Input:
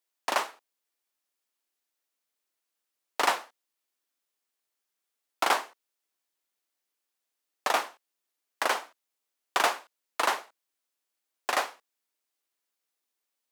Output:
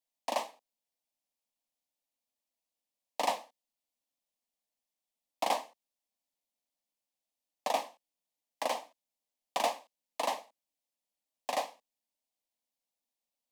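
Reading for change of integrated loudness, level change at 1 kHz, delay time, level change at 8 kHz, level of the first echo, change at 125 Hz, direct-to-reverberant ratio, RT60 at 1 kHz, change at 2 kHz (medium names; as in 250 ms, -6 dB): -6.0 dB, -5.0 dB, no echo, -6.5 dB, no echo, no reading, no reverb, no reverb, -12.5 dB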